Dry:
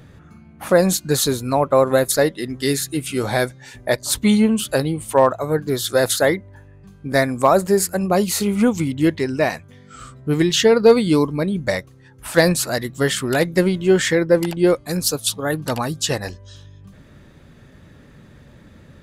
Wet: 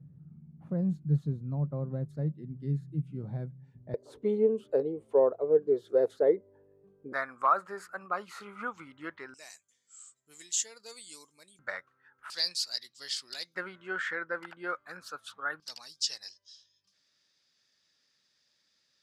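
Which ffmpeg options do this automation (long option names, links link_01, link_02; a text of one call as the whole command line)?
ffmpeg -i in.wav -af "asetnsamples=nb_out_samples=441:pad=0,asendcmd='3.94 bandpass f 440;7.13 bandpass f 1300;9.34 bandpass f 7300;11.59 bandpass f 1400;12.3 bandpass f 4800;13.55 bandpass f 1400;15.6 bandpass f 5100',bandpass=frequency=150:width_type=q:width=6:csg=0" out.wav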